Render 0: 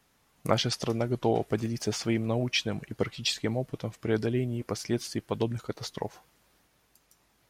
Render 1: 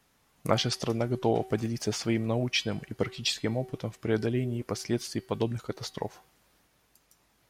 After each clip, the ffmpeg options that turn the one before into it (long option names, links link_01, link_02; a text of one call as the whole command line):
ffmpeg -i in.wav -af "bandreject=frequency=380.9:width_type=h:width=4,bandreject=frequency=761.8:width_type=h:width=4,bandreject=frequency=1142.7:width_type=h:width=4,bandreject=frequency=1523.6:width_type=h:width=4,bandreject=frequency=1904.5:width_type=h:width=4,bandreject=frequency=2285.4:width_type=h:width=4,bandreject=frequency=2666.3:width_type=h:width=4,bandreject=frequency=3047.2:width_type=h:width=4,bandreject=frequency=3428.1:width_type=h:width=4,bandreject=frequency=3809:width_type=h:width=4,bandreject=frequency=4189.9:width_type=h:width=4,bandreject=frequency=4570.8:width_type=h:width=4,bandreject=frequency=4951.7:width_type=h:width=4" out.wav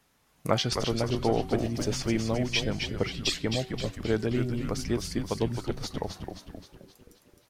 ffmpeg -i in.wav -filter_complex "[0:a]asplit=8[link_01][link_02][link_03][link_04][link_05][link_06][link_07][link_08];[link_02]adelay=263,afreqshift=-100,volume=-6dB[link_09];[link_03]adelay=526,afreqshift=-200,volume=-11.4dB[link_10];[link_04]adelay=789,afreqshift=-300,volume=-16.7dB[link_11];[link_05]adelay=1052,afreqshift=-400,volume=-22.1dB[link_12];[link_06]adelay=1315,afreqshift=-500,volume=-27.4dB[link_13];[link_07]adelay=1578,afreqshift=-600,volume=-32.8dB[link_14];[link_08]adelay=1841,afreqshift=-700,volume=-38.1dB[link_15];[link_01][link_09][link_10][link_11][link_12][link_13][link_14][link_15]amix=inputs=8:normalize=0" out.wav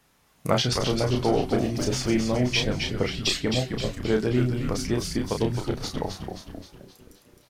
ffmpeg -i in.wav -filter_complex "[0:a]asplit=2[link_01][link_02];[link_02]adelay=32,volume=-5dB[link_03];[link_01][link_03]amix=inputs=2:normalize=0,asplit=2[link_04][link_05];[link_05]asoftclip=type=tanh:threshold=-19dB,volume=-7.5dB[link_06];[link_04][link_06]amix=inputs=2:normalize=0" out.wav